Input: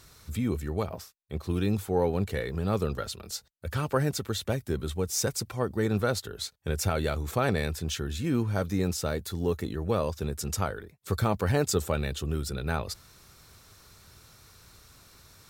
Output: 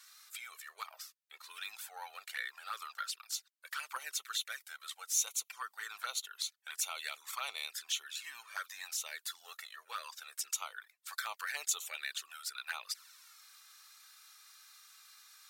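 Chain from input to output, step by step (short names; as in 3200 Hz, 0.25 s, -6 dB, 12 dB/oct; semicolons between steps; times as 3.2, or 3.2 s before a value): HPF 1200 Hz 24 dB/oct; envelope flanger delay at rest 3 ms, full sweep at -32.5 dBFS; gain +1.5 dB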